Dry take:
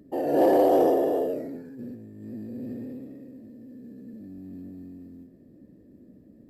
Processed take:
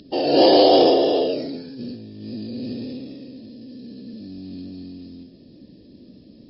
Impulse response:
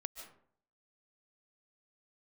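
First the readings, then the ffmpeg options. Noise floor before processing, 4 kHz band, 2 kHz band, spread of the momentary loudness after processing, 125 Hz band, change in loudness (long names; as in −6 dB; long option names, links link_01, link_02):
−54 dBFS, can't be measured, +7.5 dB, 23 LU, +6.0 dB, +6.5 dB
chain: -filter_complex "[0:a]aexciter=amount=15.1:drive=4.2:freq=2800[link_01];[1:a]atrim=start_sample=2205,atrim=end_sample=3087,asetrate=23814,aresample=44100[link_02];[link_01][link_02]afir=irnorm=-1:irlink=0,volume=6.5dB" -ar 12000 -c:a libmp3lame -b:a 24k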